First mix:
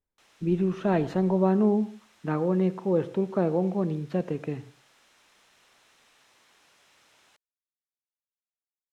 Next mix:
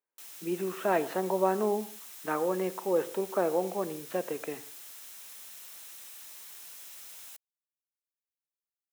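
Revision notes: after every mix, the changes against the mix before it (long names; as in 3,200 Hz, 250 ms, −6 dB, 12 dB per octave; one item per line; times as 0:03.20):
speech: add band-pass filter 450–2,200 Hz
master: remove head-to-tape spacing loss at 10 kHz 23 dB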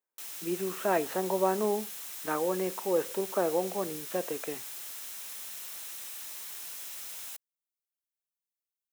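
background +5.5 dB
reverb: off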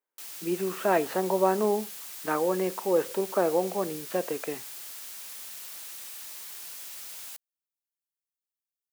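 speech +3.5 dB
master: remove notch filter 4,600 Hz, Q 13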